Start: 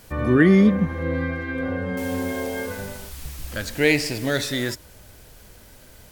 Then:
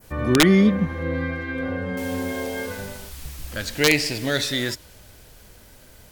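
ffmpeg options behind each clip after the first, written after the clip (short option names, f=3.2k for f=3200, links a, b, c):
-af "aeval=exprs='(mod(2.11*val(0)+1,2)-1)/2.11':c=same,adynamicequalizer=threshold=0.0126:dfrequency=3700:dqfactor=0.77:tfrequency=3700:tqfactor=0.77:attack=5:release=100:ratio=0.375:range=2.5:mode=boostabove:tftype=bell,volume=-1dB"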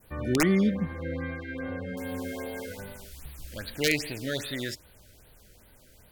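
-af "afftfilt=real='re*(1-between(b*sr/1024,880*pow(6900/880,0.5+0.5*sin(2*PI*2.5*pts/sr))/1.41,880*pow(6900/880,0.5+0.5*sin(2*PI*2.5*pts/sr))*1.41))':imag='im*(1-between(b*sr/1024,880*pow(6900/880,0.5+0.5*sin(2*PI*2.5*pts/sr))/1.41,880*pow(6900/880,0.5+0.5*sin(2*PI*2.5*pts/sr))*1.41))':win_size=1024:overlap=0.75,volume=-7.5dB"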